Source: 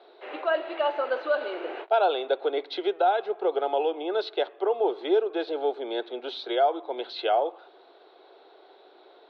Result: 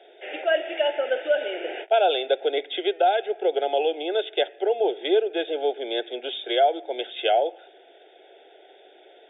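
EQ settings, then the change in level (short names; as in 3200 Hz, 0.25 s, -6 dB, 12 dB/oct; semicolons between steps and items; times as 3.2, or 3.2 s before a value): HPF 760 Hz 6 dB/oct; Butterworth band-stop 1100 Hz, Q 1.2; brick-wall FIR low-pass 3700 Hz; +8.5 dB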